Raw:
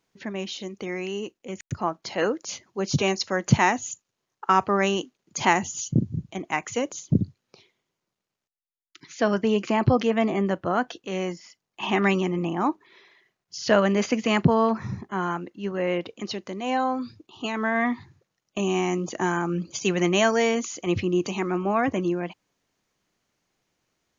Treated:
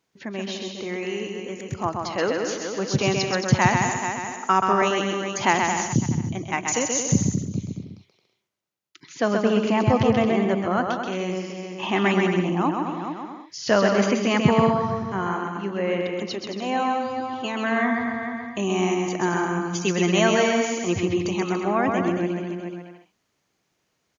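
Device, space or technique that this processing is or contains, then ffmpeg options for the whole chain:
ducked delay: -filter_complex "[0:a]asplit=3[link_01][link_02][link_03];[link_02]adelay=426,volume=-8dB[link_04];[link_03]apad=whole_len=1085183[link_05];[link_04][link_05]sidechaincompress=threshold=-42dB:ratio=8:attack=8:release=124[link_06];[link_01][link_06]amix=inputs=2:normalize=0,highpass=52,asettb=1/sr,asplit=3[link_07][link_08][link_09];[link_07]atrim=end=6.684[link_10];[link_08]atrim=start=6.68:end=7.23,asetpts=PTS-STARTPTS,afade=type=in:duration=0.004:curve=qsin,afade=type=out:start_time=0.546:duration=0.004:curve=qsin,bass=frequency=250:gain=1,treble=frequency=4000:gain=14[link_11];[link_09]atrim=start=7.226[link_12];[link_10][link_11]acrossfade=duration=0.004:curve1=hsin:curve2=qsin[link_13];[link_13][link_12]acrossfade=duration=0.004:curve1=qsin:curve2=hsin,aecho=1:1:130|221|284.7|329.3|360.5:0.631|0.398|0.251|0.158|0.1"

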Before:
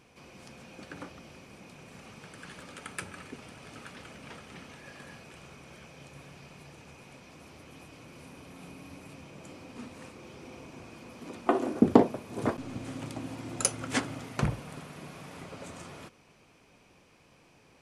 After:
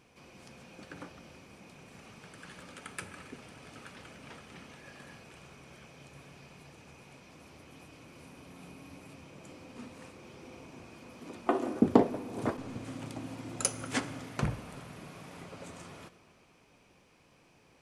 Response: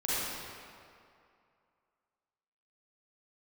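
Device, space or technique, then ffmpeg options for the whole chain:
saturated reverb return: -filter_complex "[0:a]asplit=2[link_01][link_02];[1:a]atrim=start_sample=2205[link_03];[link_02][link_03]afir=irnorm=-1:irlink=0,asoftclip=type=tanh:threshold=-10.5dB,volume=-21.5dB[link_04];[link_01][link_04]amix=inputs=2:normalize=0,volume=-3.5dB"

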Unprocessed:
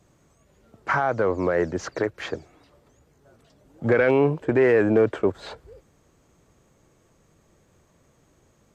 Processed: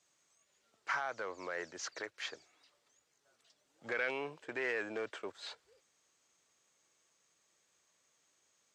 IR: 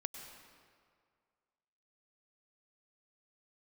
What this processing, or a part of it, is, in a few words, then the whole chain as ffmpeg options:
piezo pickup straight into a mixer: -af "lowpass=5600,aderivative,volume=2.5dB"

